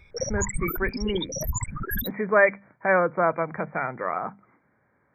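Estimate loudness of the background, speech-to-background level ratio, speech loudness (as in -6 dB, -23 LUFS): -31.0 LUFS, 5.5 dB, -25.5 LUFS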